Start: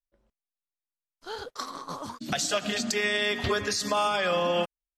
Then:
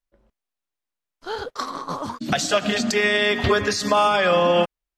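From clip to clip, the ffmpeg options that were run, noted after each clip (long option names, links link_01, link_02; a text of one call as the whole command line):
ffmpeg -i in.wav -af "highshelf=frequency=4200:gain=-8.5,volume=8.5dB" out.wav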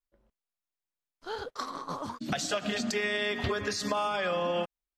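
ffmpeg -i in.wav -af "acompressor=threshold=-19dB:ratio=6,volume=-7.5dB" out.wav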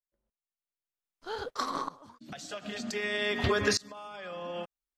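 ffmpeg -i in.wav -af "aeval=exprs='val(0)*pow(10,-25*if(lt(mod(-0.53*n/s,1),2*abs(-0.53)/1000),1-mod(-0.53*n/s,1)/(2*abs(-0.53)/1000),(mod(-0.53*n/s,1)-2*abs(-0.53)/1000)/(1-2*abs(-0.53)/1000))/20)':channel_layout=same,volume=7dB" out.wav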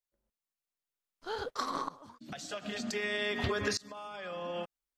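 ffmpeg -i in.wav -af "acompressor=threshold=-31dB:ratio=2.5" out.wav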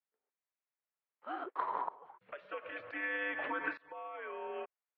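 ffmpeg -i in.wav -af "highpass=frequency=570:width_type=q:width=0.5412,highpass=frequency=570:width_type=q:width=1.307,lowpass=frequency=2500:width_type=q:width=0.5176,lowpass=frequency=2500:width_type=q:width=0.7071,lowpass=frequency=2500:width_type=q:width=1.932,afreqshift=-120" out.wav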